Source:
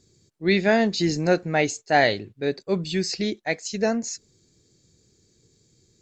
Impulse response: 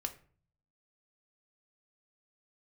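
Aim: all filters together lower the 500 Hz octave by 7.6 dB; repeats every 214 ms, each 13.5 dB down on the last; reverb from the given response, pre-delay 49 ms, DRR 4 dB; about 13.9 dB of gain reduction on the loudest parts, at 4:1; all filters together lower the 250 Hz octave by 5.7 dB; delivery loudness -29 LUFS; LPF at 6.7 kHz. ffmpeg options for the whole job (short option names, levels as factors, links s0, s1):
-filter_complex "[0:a]lowpass=6700,equalizer=f=250:t=o:g=-5.5,equalizer=f=500:t=o:g=-9,acompressor=threshold=0.02:ratio=4,aecho=1:1:214|428:0.211|0.0444,asplit=2[s0][s1];[1:a]atrim=start_sample=2205,adelay=49[s2];[s1][s2]afir=irnorm=-1:irlink=0,volume=0.668[s3];[s0][s3]amix=inputs=2:normalize=0,volume=2"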